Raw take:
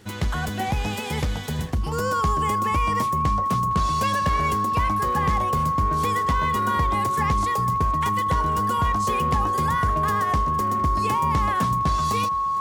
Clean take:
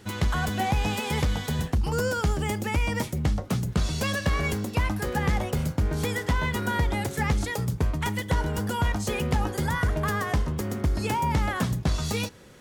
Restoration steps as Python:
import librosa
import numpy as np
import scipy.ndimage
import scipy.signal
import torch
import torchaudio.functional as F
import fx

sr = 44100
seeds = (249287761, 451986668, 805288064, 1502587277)

y = fx.fix_declick_ar(x, sr, threshold=6.5)
y = fx.notch(y, sr, hz=1100.0, q=30.0)
y = fx.fix_echo_inverse(y, sr, delay_ms=459, level_db=-19.0)